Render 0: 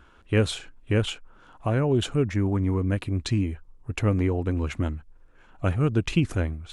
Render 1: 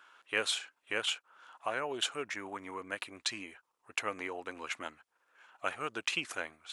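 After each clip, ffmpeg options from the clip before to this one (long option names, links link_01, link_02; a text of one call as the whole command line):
ffmpeg -i in.wav -af "highpass=930" out.wav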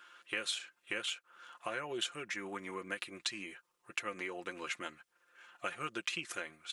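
ffmpeg -i in.wav -af "equalizer=frequency=820:width_type=o:width=0.94:gain=-8.5,acompressor=threshold=-40dB:ratio=3,aecho=1:1:5.7:0.56,volume=3dB" out.wav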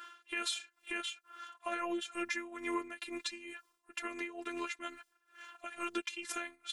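ffmpeg -i in.wav -af "tremolo=f=2.2:d=0.82,alimiter=level_in=8dB:limit=-24dB:level=0:latency=1:release=93,volume=-8dB,afftfilt=real='hypot(re,im)*cos(PI*b)':imag='0':win_size=512:overlap=0.75,volume=11dB" out.wav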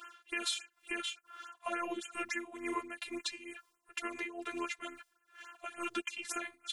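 ffmpeg -i in.wav -af "afftfilt=real='re*(1-between(b*sr/1024,230*pow(4700/230,0.5+0.5*sin(2*PI*3.5*pts/sr))/1.41,230*pow(4700/230,0.5+0.5*sin(2*PI*3.5*pts/sr))*1.41))':imag='im*(1-between(b*sr/1024,230*pow(4700/230,0.5+0.5*sin(2*PI*3.5*pts/sr))/1.41,230*pow(4700/230,0.5+0.5*sin(2*PI*3.5*pts/sr))*1.41))':win_size=1024:overlap=0.75,volume=1.5dB" out.wav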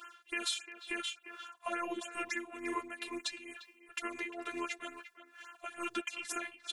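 ffmpeg -i in.wav -filter_complex "[0:a]asplit=2[link_01][link_02];[link_02]adelay=350,highpass=300,lowpass=3400,asoftclip=type=hard:threshold=-25.5dB,volume=-12dB[link_03];[link_01][link_03]amix=inputs=2:normalize=0" out.wav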